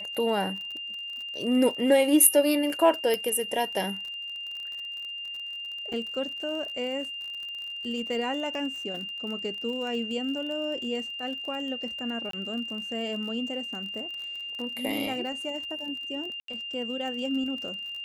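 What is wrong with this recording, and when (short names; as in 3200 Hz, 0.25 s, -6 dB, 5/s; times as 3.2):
crackle 40/s -36 dBFS
tone 2800 Hz -34 dBFS
3.14 pop -13 dBFS
5.93 gap 4.8 ms
12.31–12.33 gap 23 ms
16.4–16.48 gap 83 ms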